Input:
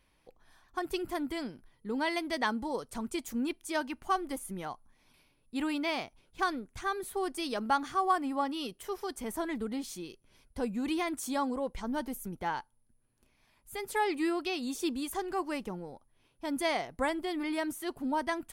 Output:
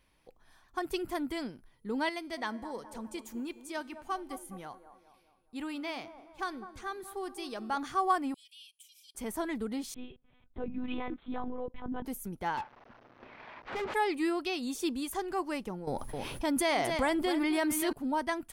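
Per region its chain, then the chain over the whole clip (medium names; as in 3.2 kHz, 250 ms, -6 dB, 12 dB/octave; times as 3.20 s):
2.09–7.77 s: feedback comb 73 Hz, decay 1.6 s, harmonics odd, mix 50% + feedback echo behind a band-pass 208 ms, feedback 46%, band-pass 610 Hz, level -10.5 dB
8.34–9.15 s: rippled Chebyshev high-pass 2.3 kHz, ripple 6 dB + compression 2:1, threshold -55 dBFS
9.94–12.05 s: treble shelf 2.9 kHz -9.5 dB + compression 2:1, threshold -34 dBFS + monotone LPC vocoder at 8 kHz 250 Hz
12.57–13.94 s: CVSD coder 32 kbps + low-pass 2.1 kHz + overdrive pedal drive 33 dB, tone 1.6 kHz, clips at -27.5 dBFS
15.87–17.93 s: delay 262 ms -13.5 dB + level flattener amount 70%
whole clip: none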